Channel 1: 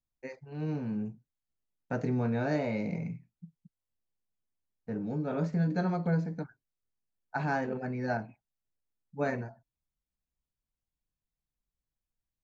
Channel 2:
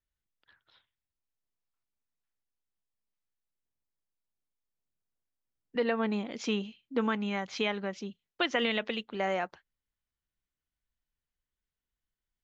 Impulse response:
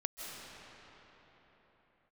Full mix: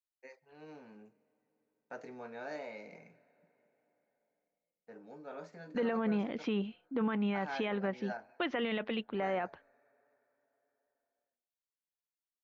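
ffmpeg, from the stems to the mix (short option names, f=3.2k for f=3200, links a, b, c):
-filter_complex "[0:a]highpass=510,volume=-8.5dB,asplit=2[a][b];[b]volume=-21dB[c];[1:a]lowpass=3.7k,aemphasis=mode=reproduction:type=75fm,agate=range=-33dB:threshold=-57dB:ratio=3:detection=peak,volume=1dB[d];[2:a]atrim=start_sample=2205[e];[c][e]afir=irnorm=-1:irlink=0[f];[a][d][f]amix=inputs=3:normalize=0,alimiter=level_in=0.5dB:limit=-24dB:level=0:latency=1:release=11,volume=-0.5dB"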